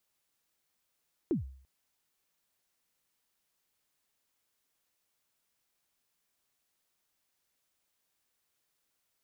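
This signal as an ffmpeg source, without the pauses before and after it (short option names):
-f lavfi -i "aevalsrc='0.0668*pow(10,-3*t/0.54)*sin(2*PI*(390*0.128/log(66/390)*(exp(log(66/390)*min(t,0.128)/0.128)-1)+66*max(t-0.128,0)))':d=0.34:s=44100"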